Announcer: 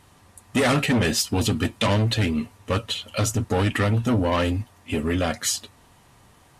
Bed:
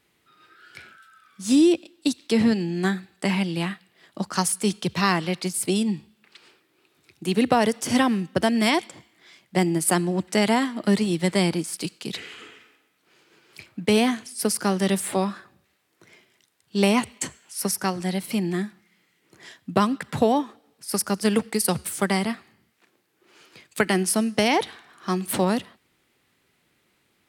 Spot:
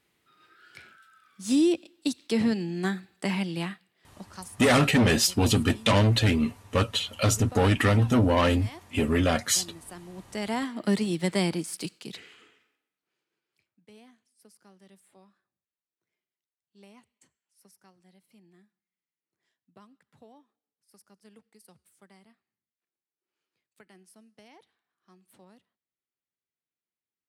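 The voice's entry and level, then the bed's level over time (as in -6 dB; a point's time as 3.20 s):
4.05 s, 0.0 dB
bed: 3.63 s -5 dB
4.62 s -23.5 dB
9.93 s -23.5 dB
10.73 s -4.5 dB
11.82 s -4.5 dB
13.83 s -34 dB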